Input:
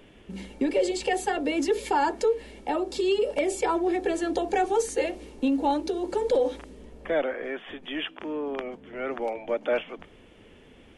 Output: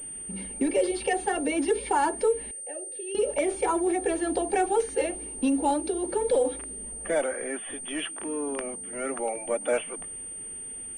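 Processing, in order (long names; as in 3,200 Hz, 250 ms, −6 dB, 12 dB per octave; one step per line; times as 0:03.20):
spectral magnitudes quantised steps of 15 dB
0:02.51–0:03.15: formant filter e
switching amplifier with a slow clock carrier 8,800 Hz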